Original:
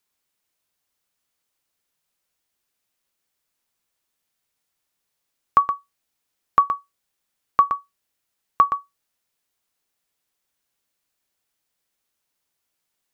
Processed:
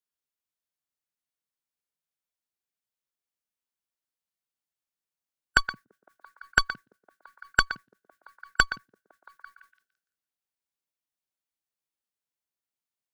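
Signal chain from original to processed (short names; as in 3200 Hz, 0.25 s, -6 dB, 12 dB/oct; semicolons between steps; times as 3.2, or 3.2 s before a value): delay with a stepping band-pass 0.169 s, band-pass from 160 Hz, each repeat 0.7 oct, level -4.5 dB; added harmonics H 2 -14 dB, 5 -22 dB, 7 -16 dB, 8 -36 dB, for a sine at -4 dBFS; formant shift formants +5 st; gain -4.5 dB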